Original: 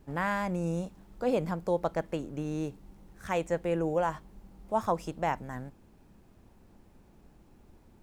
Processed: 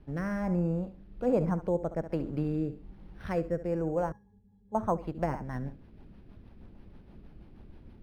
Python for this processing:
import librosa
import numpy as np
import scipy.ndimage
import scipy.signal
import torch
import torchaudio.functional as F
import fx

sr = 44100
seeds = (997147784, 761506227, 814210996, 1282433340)

p1 = fx.high_shelf(x, sr, hz=3800.0, db=7.5)
p2 = fx.env_lowpass_down(p1, sr, base_hz=1700.0, full_db=-27.0)
p3 = fx.low_shelf(p2, sr, hz=270.0, db=6.5)
p4 = p3 + fx.echo_feedback(p3, sr, ms=68, feedback_pct=26, wet_db=-13, dry=0)
p5 = fx.rider(p4, sr, range_db=3, speed_s=2.0)
p6 = fx.rotary_switch(p5, sr, hz=1.2, then_hz=6.3, switch_at_s=3.84)
p7 = fx.octave_resonator(p6, sr, note='G#', decay_s=0.14, at=(4.12, 4.75))
y = np.interp(np.arange(len(p7)), np.arange(len(p7))[::6], p7[::6])